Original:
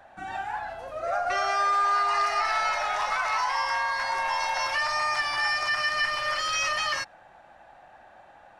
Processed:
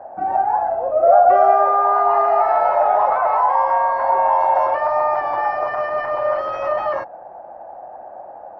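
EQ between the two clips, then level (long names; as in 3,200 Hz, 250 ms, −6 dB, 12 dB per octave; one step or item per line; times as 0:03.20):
resonant band-pass 620 Hz, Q 1
spectral tilt −4.5 dB per octave
parametric band 690 Hz +12.5 dB 2.1 octaves
+3.5 dB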